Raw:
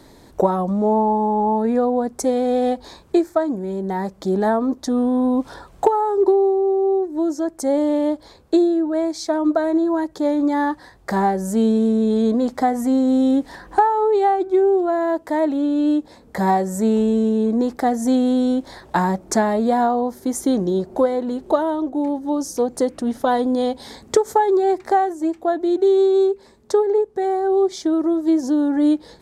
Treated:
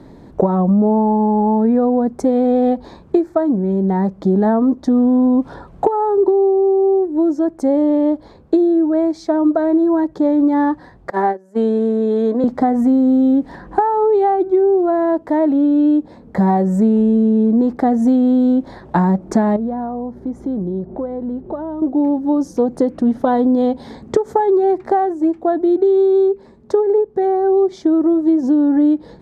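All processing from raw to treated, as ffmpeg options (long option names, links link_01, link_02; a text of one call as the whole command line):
ffmpeg -i in.wav -filter_complex "[0:a]asettb=1/sr,asplit=3[link_01][link_02][link_03];[link_01]atrim=end=11.104[link_04];[link_02]atrim=start=11.1:end=12.44,asetpts=PTS-STARTPTS,afade=type=in:duration=0.004:curve=qsin,afade=type=out:start_time=1.336:duration=0.004:curve=qsin,agate=range=-21dB:threshold=-20dB:ratio=16:release=100:detection=peak,highpass=frequency=300:width=0.5412,highpass=frequency=300:width=1.3066,equalizer=frequency=1800:width_type=o:width=0.55:gain=5[link_05];[link_03]atrim=start=12.436[link_06];[link_04][link_05]acrossfade=duration=0.004:curve1=hsin:curve2=qsin[link_07];[link_07][link_06]acrossfade=duration=0.004:curve1=qsin:curve2=hsin,asettb=1/sr,asplit=3[link_08][link_09][link_10];[link_08]atrim=end=19.564[link_11];[link_09]atrim=start=19.56:end=21.82,asetpts=PTS-STARTPTS,afade=type=in:duration=0.004:curve=qsin,afade=type=out:start_time=2.256:duration=0.004:curve=qsin,lowpass=frequency=1400:poles=1,acompressor=threshold=-35dB:ratio=2:attack=3.2:release=140:knee=1:detection=peak,aeval=exprs='val(0)+0.00316*(sin(2*PI*60*n/s)+sin(2*PI*2*60*n/s)/2+sin(2*PI*3*60*n/s)/3+sin(2*PI*4*60*n/s)/4+sin(2*PI*5*60*n/s)/5)':channel_layout=same[link_12];[link_10]atrim=start=21.816[link_13];[link_11][link_12]acrossfade=duration=0.004:curve1=hsin:curve2=qsin[link_14];[link_14][link_13]acrossfade=duration=0.004:curve1=qsin:curve2=hsin,lowpass=frequency=1100:poles=1,equalizer=frequency=180:width_type=o:width=1.4:gain=6.5,acompressor=threshold=-15dB:ratio=6,volume=4.5dB" out.wav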